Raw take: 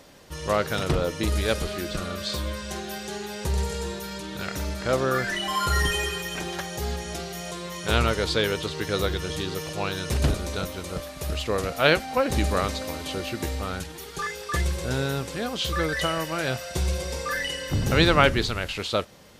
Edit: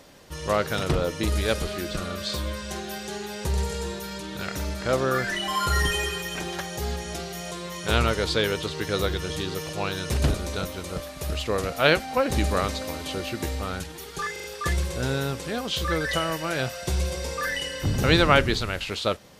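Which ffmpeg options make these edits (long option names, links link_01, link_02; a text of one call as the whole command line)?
ffmpeg -i in.wav -filter_complex "[0:a]asplit=4[link_01][link_02][link_03][link_04];[link_01]atrim=end=14.362[link_05];[link_02]atrim=start=14.318:end=14.362[link_06];[link_03]atrim=start=14.318:end=14.362[link_07];[link_04]atrim=start=14.318[link_08];[link_05][link_06]acrossfade=duration=0.004:curve1=hsin:curve2=hsin[link_09];[link_09][link_07]acrossfade=duration=0.004:curve1=hsin:curve2=hsin[link_10];[link_10][link_08]acrossfade=duration=0.004:curve1=hsin:curve2=hsin" out.wav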